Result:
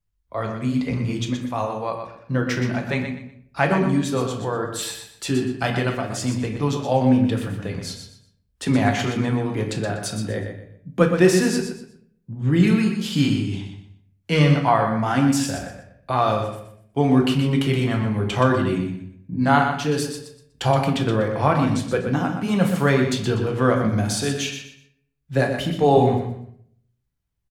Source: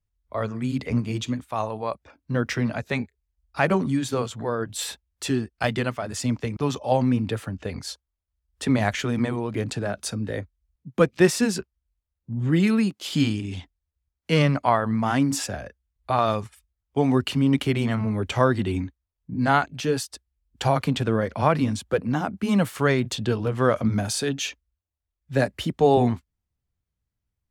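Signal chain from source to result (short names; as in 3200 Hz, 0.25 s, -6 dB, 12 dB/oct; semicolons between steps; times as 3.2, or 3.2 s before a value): feedback echo 0.122 s, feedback 27%, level -8 dB; on a send at -3 dB: reverb RT60 0.65 s, pre-delay 6 ms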